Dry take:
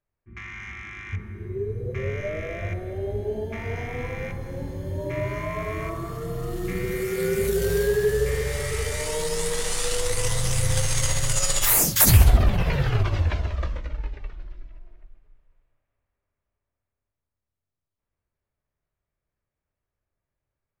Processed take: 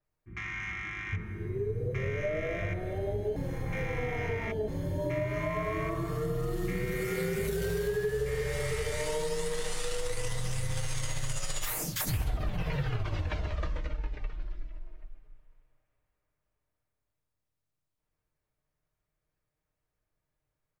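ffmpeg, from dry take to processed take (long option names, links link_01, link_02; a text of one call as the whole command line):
ffmpeg -i in.wav -filter_complex "[0:a]asplit=3[link_01][link_02][link_03];[link_01]atrim=end=3.362[link_04];[link_02]atrim=start=3.358:end=4.682,asetpts=PTS-STARTPTS,areverse[link_05];[link_03]atrim=start=4.678[link_06];[link_04][link_05]acrossfade=duration=0.004:curve1=hsin:curve2=hsin[link_07];[link_07][link_06]acrossfade=duration=0.004:curve1=hsin:curve2=hsin,aecho=1:1:6.5:0.43,acompressor=threshold=-28dB:ratio=6,adynamicequalizer=threshold=0.00355:dfrequency=4700:dqfactor=0.7:tfrequency=4700:tqfactor=0.7:attack=5:release=100:ratio=0.375:range=2.5:mode=cutabove:tftype=highshelf" out.wav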